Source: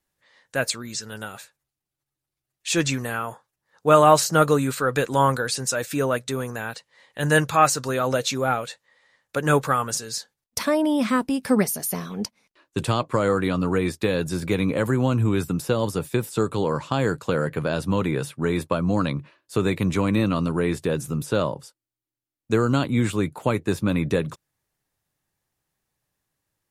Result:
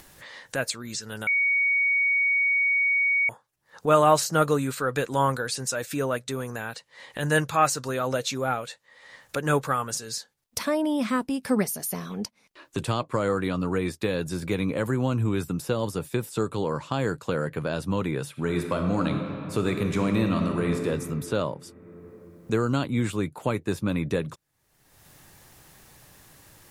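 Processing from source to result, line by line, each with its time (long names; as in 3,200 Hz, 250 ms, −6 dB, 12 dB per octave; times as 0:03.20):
0:01.27–0:03.29: beep over 2,240 Hz −15.5 dBFS
0:18.30–0:20.85: thrown reverb, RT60 2.2 s, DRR 3.5 dB
whole clip: upward compression, threshold −24 dBFS; level −4 dB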